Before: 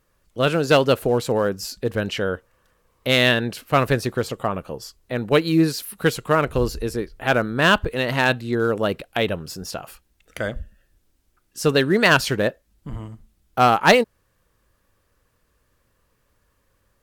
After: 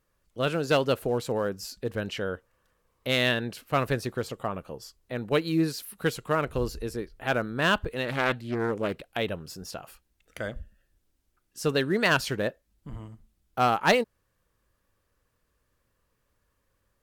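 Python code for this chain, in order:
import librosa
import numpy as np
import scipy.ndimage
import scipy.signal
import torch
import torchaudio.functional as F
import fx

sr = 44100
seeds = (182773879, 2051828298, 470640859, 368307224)

y = fx.doppler_dist(x, sr, depth_ms=0.39, at=(8.05, 9.16))
y = y * librosa.db_to_amplitude(-7.5)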